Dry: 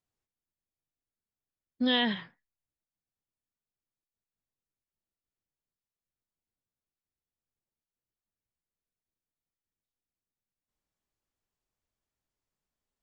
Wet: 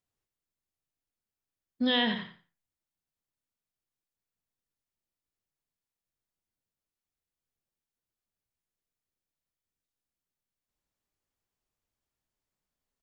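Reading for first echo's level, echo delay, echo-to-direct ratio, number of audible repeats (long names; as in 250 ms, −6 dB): −9.5 dB, 89 ms, −9.5 dB, 2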